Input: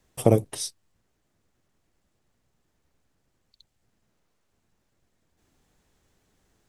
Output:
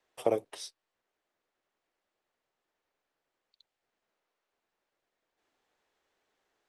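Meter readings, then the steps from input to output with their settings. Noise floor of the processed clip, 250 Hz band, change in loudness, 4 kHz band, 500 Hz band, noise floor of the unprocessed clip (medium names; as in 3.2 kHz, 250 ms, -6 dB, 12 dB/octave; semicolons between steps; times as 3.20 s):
under -85 dBFS, -14.0 dB, -9.5 dB, -8.5 dB, -7.0 dB, -74 dBFS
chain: three-band isolator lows -23 dB, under 370 Hz, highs -12 dB, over 4.6 kHz; trim -4.5 dB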